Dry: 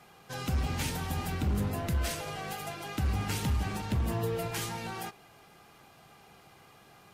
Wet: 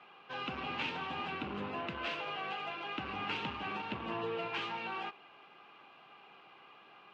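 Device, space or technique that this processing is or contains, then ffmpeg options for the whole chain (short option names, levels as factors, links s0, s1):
phone earpiece: -af "highpass=340,equalizer=f=470:t=q:w=4:g=-3,equalizer=f=670:t=q:w=4:g=-4,equalizer=f=1100:t=q:w=4:g=4,equalizer=f=1900:t=q:w=4:g=-4,equalizer=f=2700:t=q:w=4:g=7,lowpass=f=3300:w=0.5412,lowpass=f=3300:w=1.3066"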